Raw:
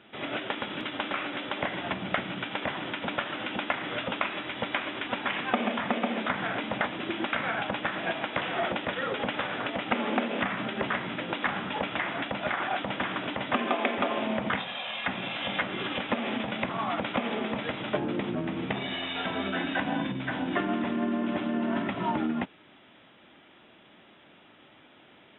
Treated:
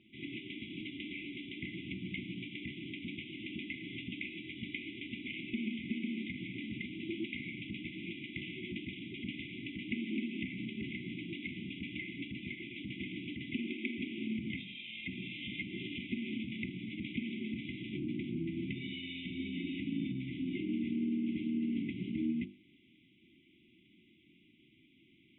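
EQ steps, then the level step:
linear-phase brick-wall band-stop 380–2,000 Hz
high-frequency loss of the air 340 metres
mains-hum notches 50/100/150/200/250/300/350 Hz
−3.5 dB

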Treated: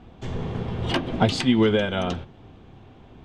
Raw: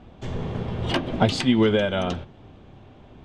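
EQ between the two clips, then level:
notch filter 590 Hz, Q 12
0.0 dB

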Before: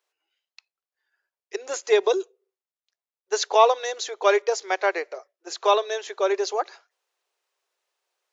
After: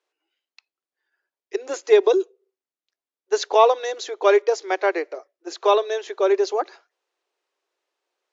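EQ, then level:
high-pass with resonance 290 Hz, resonance Q 3.5
high-frequency loss of the air 55 metres
0.0 dB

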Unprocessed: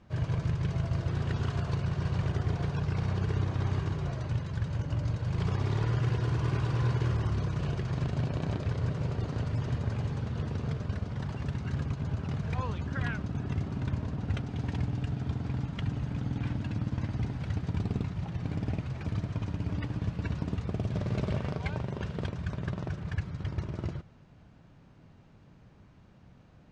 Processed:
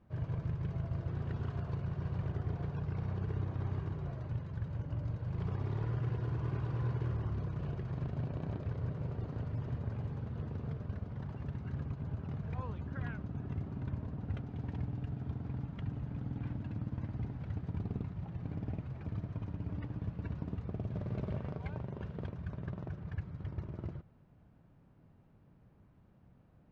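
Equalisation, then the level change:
low-pass filter 1,200 Hz 6 dB per octave
−6.5 dB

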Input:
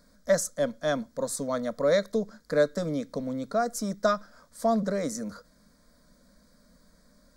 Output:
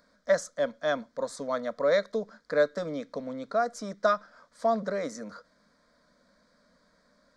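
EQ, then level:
head-to-tape spacing loss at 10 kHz 30 dB
spectral tilt +2.5 dB per octave
low-shelf EQ 310 Hz −8.5 dB
+5.0 dB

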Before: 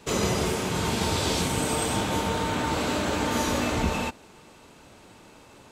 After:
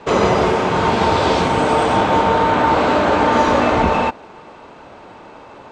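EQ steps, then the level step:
high-frequency loss of the air 120 metres
parametric band 830 Hz +11.5 dB 2.7 octaves
+4.5 dB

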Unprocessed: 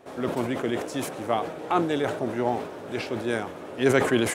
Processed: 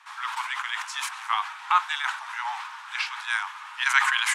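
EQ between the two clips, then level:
Butterworth high-pass 920 Hz 72 dB per octave
high-frequency loss of the air 50 metres
+8.0 dB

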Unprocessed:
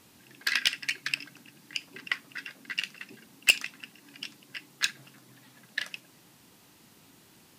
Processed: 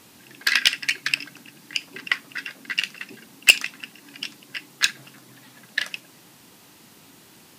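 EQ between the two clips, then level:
low-shelf EQ 110 Hz −6.5 dB
+7.5 dB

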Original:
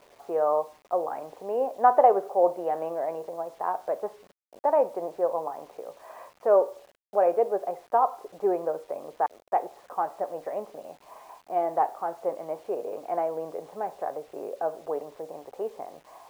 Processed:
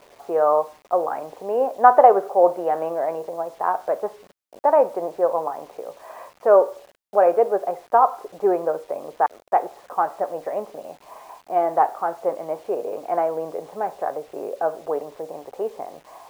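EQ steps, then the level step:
dynamic equaliser 1,400 Hz, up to +5 dB, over −41 dBFS, Q 2
+5.5 dB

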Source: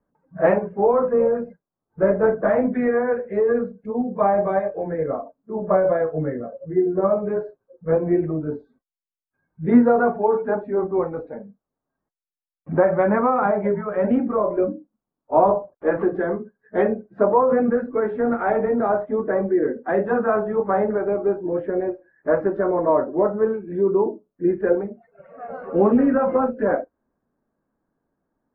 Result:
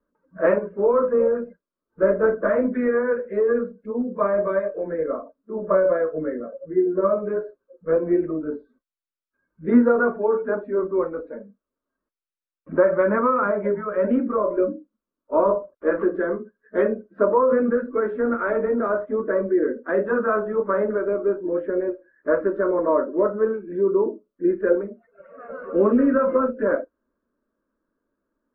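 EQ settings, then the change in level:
high-frequency loss of the air 130 metres
flat-topped bell 910 Hz +8.5 dB
phaser with its sweep stopped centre 320 Hz, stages 4
0.0 dB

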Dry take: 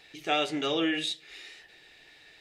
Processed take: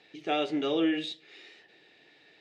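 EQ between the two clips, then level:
band-pass filter 220–3,900 Hz
tilt shelving filter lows +8.5 dB, about 760 Hz
high-shelf EQ 2,700 Hz +11 dB
−2.5 dB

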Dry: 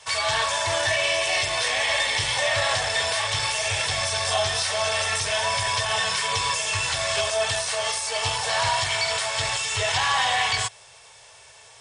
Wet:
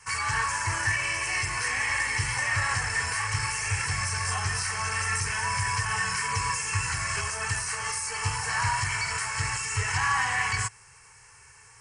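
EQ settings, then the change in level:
low-shelf EQ 200 Hz +5 dB
phaser with its sweep stopped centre 1,500 Hz, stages 4
0.0 dB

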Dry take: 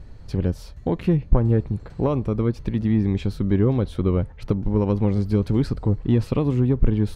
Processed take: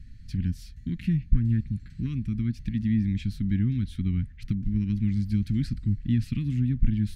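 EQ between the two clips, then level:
Chebyshev band-stop filter 240–1,800 Hz, order 3
−3.5 dB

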